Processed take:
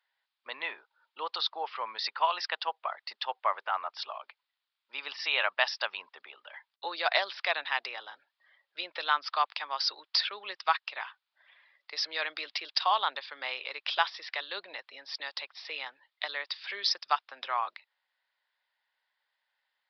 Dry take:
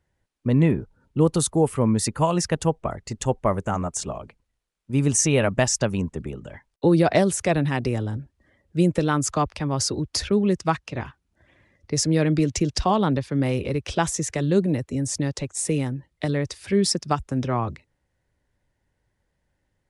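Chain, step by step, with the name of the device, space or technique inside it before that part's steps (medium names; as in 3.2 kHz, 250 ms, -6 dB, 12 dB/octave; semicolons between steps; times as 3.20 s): musical greeting card (resampled via 11.025 kHz; high-pass 880 Hz 24 dB/octave; peaking EQ 3.6 kHz +6 dB 0.54 oct)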